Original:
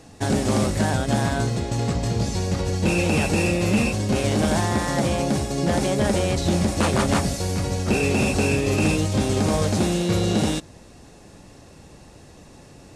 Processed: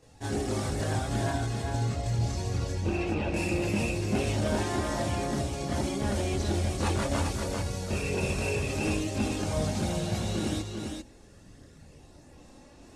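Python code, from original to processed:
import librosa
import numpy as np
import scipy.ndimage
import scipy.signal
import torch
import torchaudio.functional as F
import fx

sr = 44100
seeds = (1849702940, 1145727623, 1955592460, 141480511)

y = fx.lowpass(x, sr, hz=2800.0, slope=12, at=(2.72, 3.34))
y = fx.chorus_voices(y, sr, voices=4, hz=0.29, base_ms=26, depth_ms=1.9, mix_pct=65)
y = y + 10.0 ** (-5.0 / 20.0) * np.pad(y, (int(395 * sr / 1000.0), 0))[:len(y)]
y = F.gain(torch.from_numpy(y), -6.5).numpy()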